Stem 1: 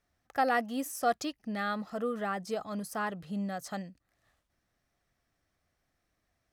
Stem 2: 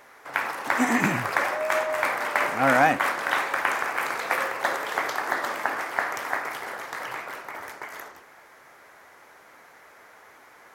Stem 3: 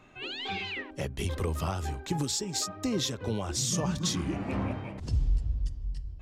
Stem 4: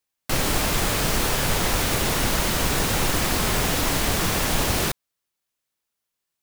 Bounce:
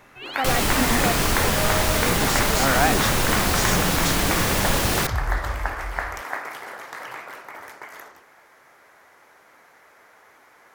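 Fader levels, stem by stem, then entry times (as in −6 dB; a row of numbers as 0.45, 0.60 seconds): +1.0, −2.0, +1.0, +0.5 decibels; 0.00, 0.00, 0.00, 0.15 seconds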